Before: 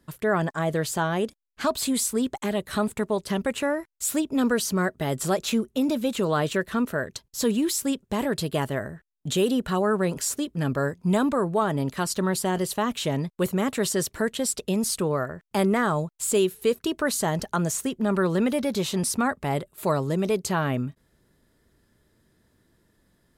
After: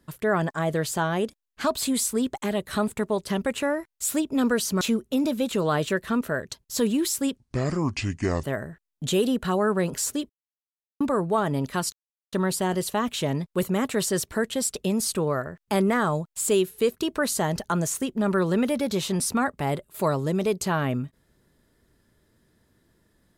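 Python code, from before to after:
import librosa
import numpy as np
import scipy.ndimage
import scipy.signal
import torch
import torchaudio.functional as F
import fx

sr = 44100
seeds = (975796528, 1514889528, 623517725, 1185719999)

y = fx.edit(x, sr, fx.cut(start_s=4.81, length_s=0.64),
    fx.speed_span(start_s=8.01, length_s=0.66, speed=0.62),
    fx.silence(start_s=10.53, length_s=0.71),
    fx.insert_silence(at_s=12.16, length_s=0.4), tone=tone)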